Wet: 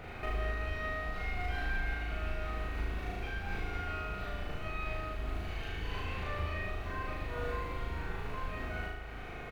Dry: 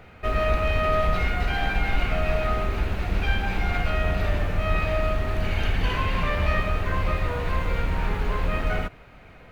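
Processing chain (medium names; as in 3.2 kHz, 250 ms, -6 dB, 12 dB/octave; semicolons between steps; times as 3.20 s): compression 16:1, threshold -36 dBFS, peak gain reduction 20 dB; doubling 40 ms -5 dB; flutter echo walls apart 6.4 m, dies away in 0.92 s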